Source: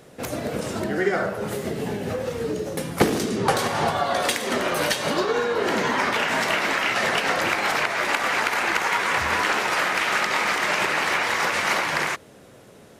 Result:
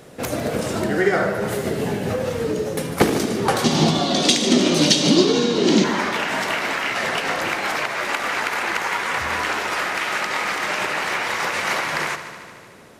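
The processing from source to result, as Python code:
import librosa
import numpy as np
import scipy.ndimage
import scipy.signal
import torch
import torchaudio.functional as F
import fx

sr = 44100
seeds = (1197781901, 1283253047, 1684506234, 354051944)

y = fx.rider(x, sr, range_db=5, speed_s=2.0)
y = fx.curve_eq(y, sr, hz=(110.0, 160.0, 320.0, 460.0, 910.0, 1600.0, 3600.0, 6400.0, 13000.0), db=(0, 13, 14, 2, -3, -7, 11, 11, -10), at=(3.64, 5.84))
y = fx.echo_heads(y, sr, ms=75, heads='first and second', feedback_pct=68, wet_db=-16)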